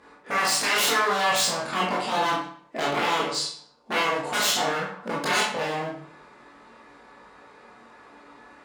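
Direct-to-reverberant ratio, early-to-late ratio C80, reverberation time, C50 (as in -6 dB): -7.0 dB, 6.5 dB, 0.55 s, 2.0 dB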